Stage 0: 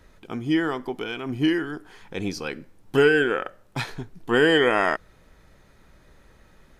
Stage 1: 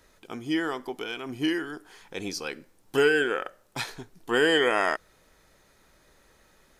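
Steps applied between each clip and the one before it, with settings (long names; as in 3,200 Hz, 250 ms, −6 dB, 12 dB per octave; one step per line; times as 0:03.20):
bass and treble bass −8 dB, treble +7 dB
level −3 dB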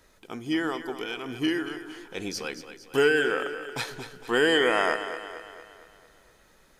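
echo with a time of its own for lows and highs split 340 Hz, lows 146 ms, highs 229 ms, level −11 dB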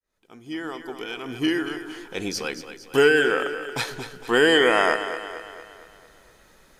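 fade in at the beginning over 1.71 s
level +4.5 dB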